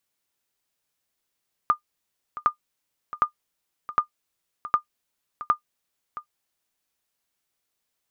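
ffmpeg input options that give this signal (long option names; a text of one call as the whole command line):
ffmpeg -f lavfi -i "aevalsrc='0.335*(sin(2*PI*1210*mod(t,0.76))*exp(-6.91*mod(t,0.76)/0.1)+0.178*sin(2*PI*1210*max(mod(t,0.76)-0.67,0))*exp(-6.91*max(mod(t,0.76)-0.67,0)/0.1))':duration=4.56:sample_rate=44100" out.wav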